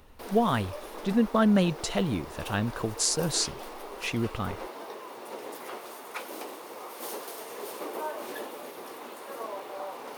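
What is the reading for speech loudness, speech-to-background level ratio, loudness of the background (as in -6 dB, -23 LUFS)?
-28.0 LUFS, 12.0 dB, -40.0 LUFS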